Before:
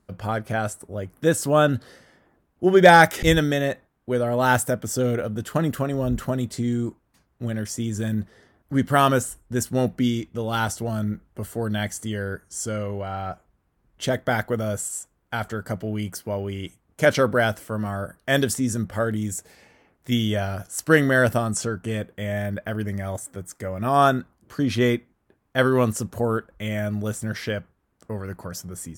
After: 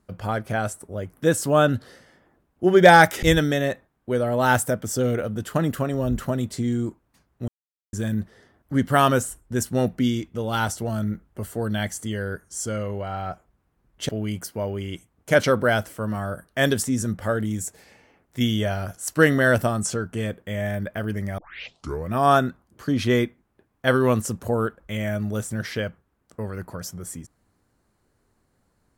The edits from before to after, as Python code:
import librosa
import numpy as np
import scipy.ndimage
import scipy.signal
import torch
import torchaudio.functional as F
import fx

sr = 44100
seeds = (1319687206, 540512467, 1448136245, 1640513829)

y = fx.edit(x, sr, fx.silence(start_s=7.48, length_s=0.45),
    fx.cut(start_s=14.09, length_s=1.71),
    fx.tape_start(start_s=23.09, length_s=0.74), tone=tone)